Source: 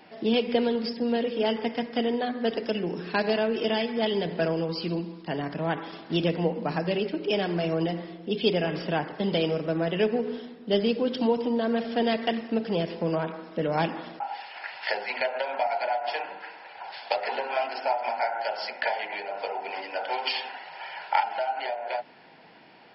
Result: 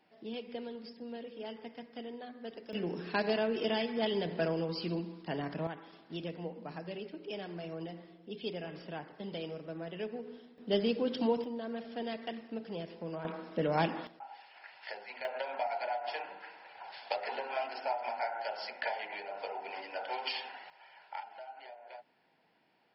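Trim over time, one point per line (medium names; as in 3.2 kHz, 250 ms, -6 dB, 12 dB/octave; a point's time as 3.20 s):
-17.5 dB
from 2.73 s -6 dB
from 5.67 s -15 dB
from 10.58 s -6 dB
from 11.44 s -13.5 dB
from 13.25 s -4 dB
from 14.07 s -15 dB
from 15.25 s -8 dB
from 20.70 s -19 dB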